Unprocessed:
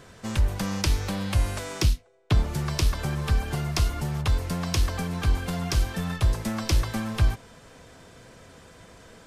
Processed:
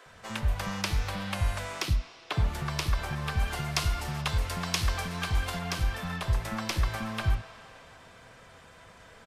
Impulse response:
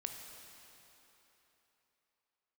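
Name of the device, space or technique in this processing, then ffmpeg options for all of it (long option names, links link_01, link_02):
filtered reverb send: -filter_complex "[0:a]asettb=1/sr,asplit=3[link_01][link_02][link_03];[link_01]atrim=end=3.394[link_04];[link_02]atrim=start=3.39:end=5.59,asetpts=PTS-STARTPTS,afade=type=in:duration=0.004:curve=qsin,afade=type=out:start_time=2.196:duration=0.004:curve=qsin,equalizer=frequency=7400:width_type=o:width=2.7:gain=5.5[link_05];[link_03]atrim=start=5.586[link_06];[link_04][link_05]acrossfade=duration=0.004:curve1=hsin:curve2=qsin[link_07];[link_07][link_06]acrossfade=duration=0.004:curve1=qsin:curve2=hsin,asplit=2[link_08][link_09];[link_09]highpass=550,lowpass=3900[link_10];[1:a]atrim=start_sample=2205[link_11];[link_10][link_11]afir=irnorm=-1:irlink=0,volume=1dB[link_12];[link_08][link_12]amix=inputs=2:normalize=0,acrossover=split=330[link_13][link_14];[link_13]adelay=60[link_15];[link_15][link_14]amix=inputs=2:normalize=0,volume=-5dB"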